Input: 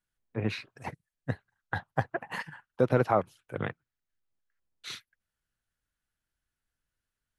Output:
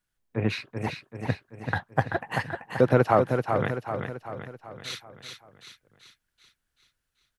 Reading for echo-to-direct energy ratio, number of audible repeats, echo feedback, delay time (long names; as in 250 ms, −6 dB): −4.5 dB, 5, 51%, 385 ms